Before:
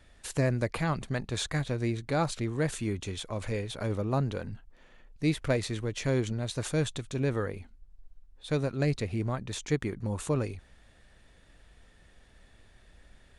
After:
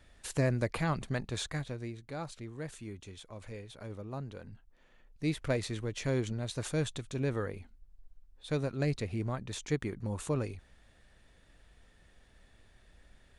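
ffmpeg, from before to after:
ffmpeg -i in.wav -af "volume=6.5dB,afade=type=out:start_time=1.14:duration=0.79:silence=0.316228,afade=type=in:start_time=4.29:duration=1.28:silence=0.375837" out.wav

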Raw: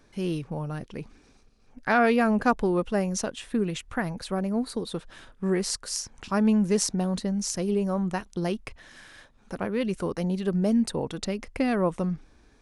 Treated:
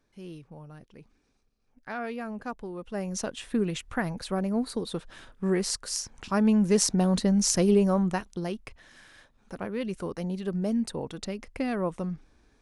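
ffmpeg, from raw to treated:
ffmpeg -i in.wav -af "volume=6dB,afade=type=in:start_time=2.79:duration=0.61:silence=0.223872,afade=type=in:start_time=6.53:duration=1.05:silence=0.473151,afade=type=out:start_time=7.58:duration=0.86:silence=0.298538" out.wav

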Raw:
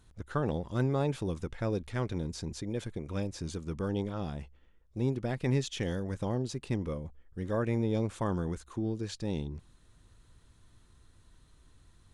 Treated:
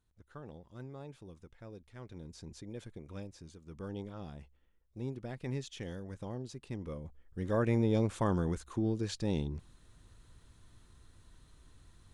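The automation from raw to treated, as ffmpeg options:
ffmpeg -i in.wav -af "volume=8.5dB,afade=type=in:start_time=1.93:duration=0.6:silence=0.398107,afade=type=out:start_time=3.13:duration=0.47:silence=0.421697,afade=type=in:start_time=3.6:duration=0.24:silence=0.398107,afade=type=in:start_time=6.74:duration=0.92:silence=0.316228" out.wav

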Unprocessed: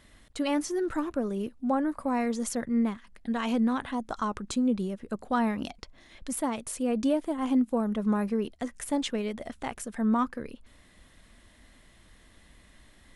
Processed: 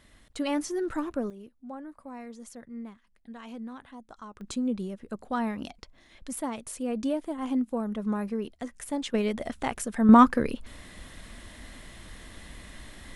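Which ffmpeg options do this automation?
ffmpeg -i in.wav -af "asetnsamples=nb_out_samples=441:pad=0,asendcmd='1.3 volume volume -14dB;4.41 volume volume -3dB;9.14 volume volume 4.5dB;10.09 volume volume 11dB',volume=-1dB" out.wav

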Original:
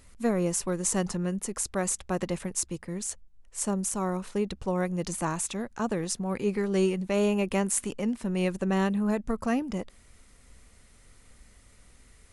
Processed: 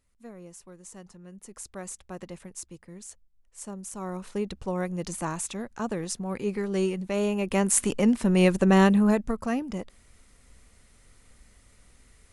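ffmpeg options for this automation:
ffmpeg -i in.wav -af "volume=7.5dB,afade=type=in:start_time=1.22:duration=0.42:silence=0.375837,afade=type=in:start_time=3.84:duration=0.51:silence=0.375837,afade=type=in:start_time=7.4:duration=0.56:silence=0.354813,afade=type=out:start_time=8.95:duration=0.42:silence=0.375837" out.wav

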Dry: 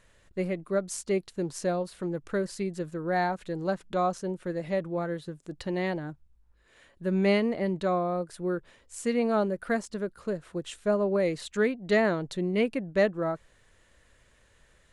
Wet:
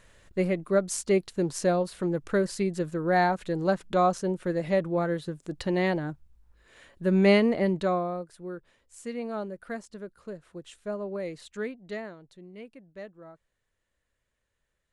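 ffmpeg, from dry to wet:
ffmpeg -i in.wav -af "volume=4dB,afade=type=out:start_time=7.61:duration=0.7:silence=0.251189,afade=type=out:start_time=11.69:duration=0.46:silence=0.298538" out.wav

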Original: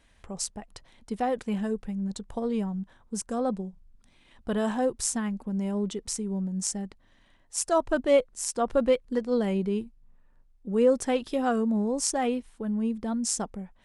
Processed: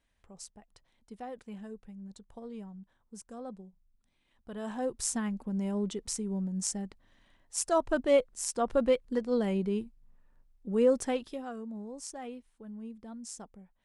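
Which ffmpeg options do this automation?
ffmpeg -i in.wav -af "volume=-3dB,afade=type=in:start_time=4.52:duration=0.63:silence=0.266073,afade=type=out:start_time=11:duration=0.45:silence=0.251189" out.wav

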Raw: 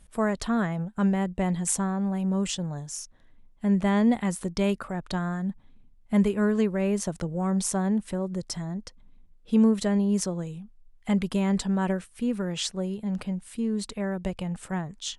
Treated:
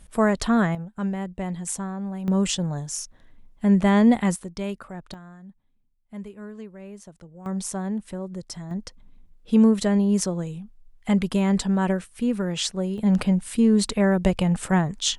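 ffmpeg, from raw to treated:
ffmpeg -i in.wav -af "asetnsamples=nb_out_samples=441:pad=0,asendcmd='0.75 volume volume -3.5dB;2.28 volume volume 5dB;4.36 volume volume -5dB;5.14 volume volume -15dB;7.46 volume volume -3dB;8.71 volume volume 3.5dB;12.98 volume volume 10dB',volume=5.5dB" out.wav

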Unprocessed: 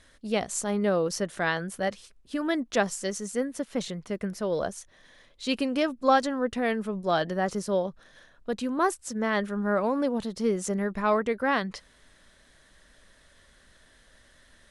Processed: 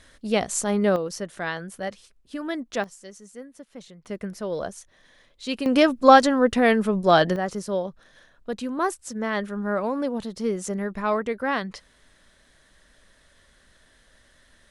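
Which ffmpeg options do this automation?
ffmpeg -i in.wav -af "asetnsamples=nb_out_samples=441:pad=0,asendcmd='0.96 volume volume -2.5dB;2.84 volume volume -12dB;4.05 volume volume -1dB;5.66 volume volume 8.5dB;7.36 volume volume 0dB',volume=4.5dB" out.wav

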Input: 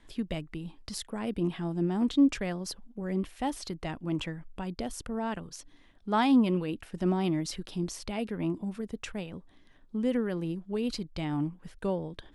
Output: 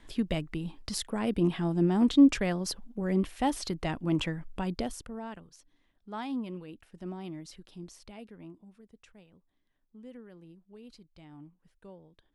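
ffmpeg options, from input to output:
ffmpeg -i in.wav -af "volume=3.5dB,afade=type=out:start_time=4.76:duration=0.26:silence=0.375837,afade=type=out:start_time=5.02:duration=0.5:silence=0.446684,afade=type=out:start_time=8.05:duration=0.58:silence=0.446684" out.wav

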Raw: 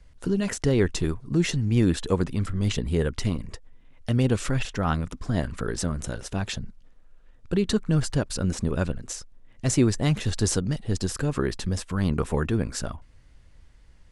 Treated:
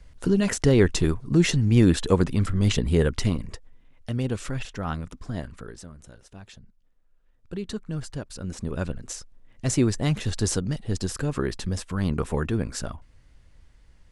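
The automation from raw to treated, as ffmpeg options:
ffmpeg -i in.wav -af "volume=18.5dB,afade=type=out:start_time=3.04:duration=1.07:silence=0.375837,afade=type=out:start_time=5.24:duration=0.62:silence=0.281838,afade=type=in:start_time=6.62:duration=0.99:silence=0.446684,afade=type=in:start_time=8.39:duration=0.66:silence=0.398107" out.wav

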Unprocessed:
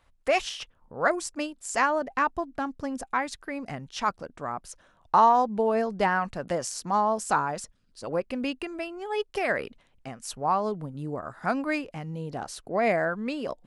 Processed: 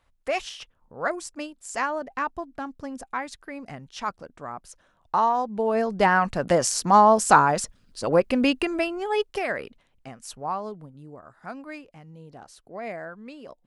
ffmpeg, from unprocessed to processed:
ffmpeg -i in.wav -af "volume=9dB,afade=type=in:start_time=5.47:duration=1.2:silence=0.251189,afade=type=out:start_time=8.79:duration=0.71:silence=0.281838,afade=type=out:start_time=10.19:duration=0.85:silence=0.375837" out.wav

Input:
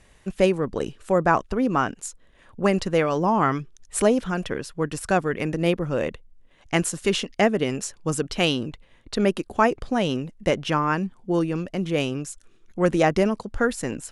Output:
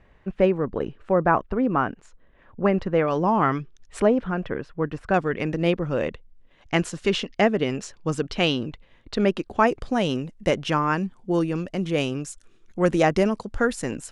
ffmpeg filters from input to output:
ffmpeg -i in.wav -af "asetnsamples=nb_out_samples=441:pad=0,asendcmd='3.08 lowpass f 4100;4 lowpass f 2000;5.14 lowpass f 5000;9.67 lowpass f 10000',lowpass=2000" out.wav

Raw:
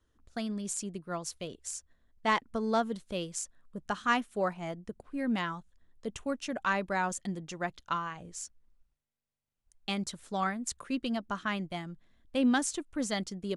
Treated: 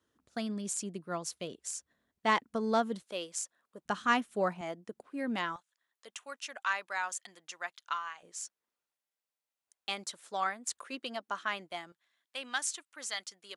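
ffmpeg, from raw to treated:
ffmpeg -i in.wav -af "asetnsamples=nb_out_samples=441:pad=0,asendcmd='3.02 highpass f 450;3.85 highpass f 110;4.61 highpass f 280;5.56 highpass f 1100;8.23 highpass f 520;11.92 highpass f 1200',highpass=160" out.wav

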